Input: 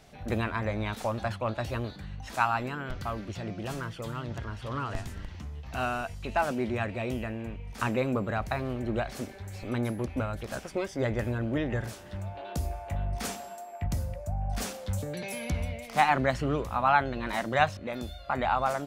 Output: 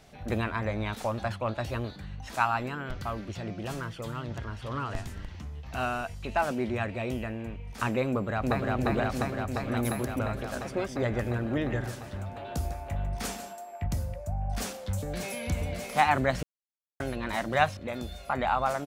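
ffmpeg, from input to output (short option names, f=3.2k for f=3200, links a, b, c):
-filter_complex "[0:a]asplit=2[a][b];[b]afade=t=in:st=8.08:d=0.01,afade=t=out:st=8.74:d=0.01,aecho=0:1:350|700|1050|1400|1750|2100|2450|2800|3150|3500|3850|4200:0.944061|0.755249|0.604199|0.483359|0.386687|0.30935|0.24748|0.197984|0.158387|0.12671|0.101368|0.0810942[c];[a][c]amix=inputs=2:normalize=0,asettb=1/sr,asplit=3[d][e][f];[d]atrim=end=9.774[g];[e]atrim=start=9.77:end=10.19,asetpts=PTS-STARTPTS,afade=t=in:d=0.004:c=qsin,afade=t=out:st=0.416:d=0.004:c=qsin,aemphasis=mode=production:type=50fm[h];[f]atrim=start=10.186[i];[g][h]acrossfade=d=0.004:c1=hsin:c2=qsin[j];[j][i]acrossfade=d=0.004:c1=qsin:c2=hsin,asettb=1/sr,asplit=3[k][l][m];[k]atrim=end=11.114[n];[l]atrim=start=11.11:end=13.53,asetpts=PTS-STARTPTS,afade=t=in:d=0.004:c=qsin,afade=t=out:st=2.416:d=0.004:c=qsin,aecho=1:1:149:0.251,atrim=end_sample=106722[o];[m]atrim=start=13.526[p];[n][o]acrossfade=d=0.004:c1=hsin:c2=qsin[q];[q][p]acrossfade=d=0.004:c1=qsin:c2=hsin,asplit=2[r][s];[s]afade=t=in:st=14.45:d=0.01,afade=t=out:st=15.38:d=0.01,aecho=0:1:590|1180|1770|2360|2950|3540|4130|4720|5310|5900|6490:0.501187|0.350831|0.245582|0.171907|0.120335|0.0842345|0.0589642|0.0412749|0.0288924|0.0202247|0.0141573[t];[r][t]amix=inputs=2:normalize=0,asplit=3[u][v][w];[u]atrim=end=16.43,asetpts=PTS-STARTPTS,afade=t=out:st=16.426:d=0.004:c=hsin[x];[v]atrim=start=16.43:end=17,asetpts=PTS-STARTPTS,volume=0[y];[w]atrim=start=17,asetpts=PTS-STARTPTS,afade=t=in:d=0.004:c=hsin[z];[x][y][z]concat=n=3:v=0:a=1"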